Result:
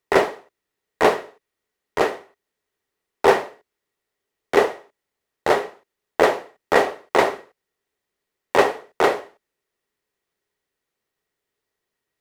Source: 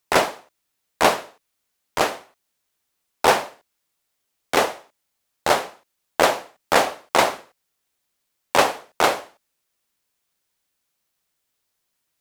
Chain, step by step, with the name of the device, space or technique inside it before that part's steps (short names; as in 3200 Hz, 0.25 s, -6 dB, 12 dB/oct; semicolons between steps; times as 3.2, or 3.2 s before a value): inside a helmet (high shelf 3600 Hz -10 dB; small resonant body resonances 410/1900 Hz, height 11 dB, ringing for 35 ms); gain -1 dB